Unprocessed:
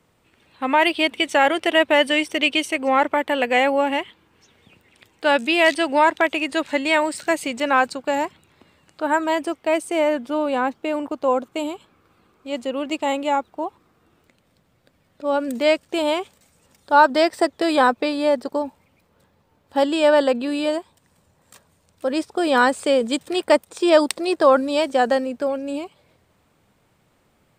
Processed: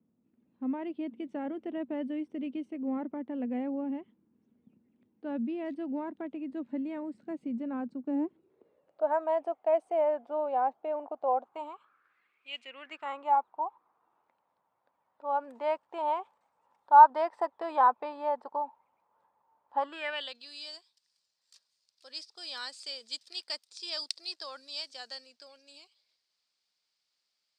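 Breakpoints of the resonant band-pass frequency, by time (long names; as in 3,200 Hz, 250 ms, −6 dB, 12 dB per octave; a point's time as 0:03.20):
resonant band-pass, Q 5.2
0:07.92 230 Hz
0:09.17 730 Hz
0:11.35 730 Hz
0:12.55 2,800 Hz
0:13.31 920 Hz
0:19.77 920 Hz
0:20.39 4,800 Hz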